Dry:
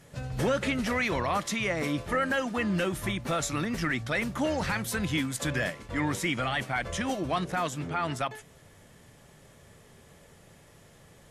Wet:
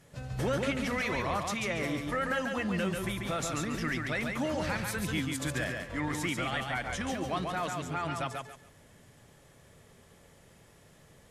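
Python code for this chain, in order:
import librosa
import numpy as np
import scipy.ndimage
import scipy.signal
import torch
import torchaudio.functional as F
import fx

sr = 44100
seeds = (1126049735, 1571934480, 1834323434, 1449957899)

y = fx.echo_feedback(x, sr, ms=140, feedback_pct=24, wet_db=-4)
y = y * librosa.db_to_amplitude(-4.5)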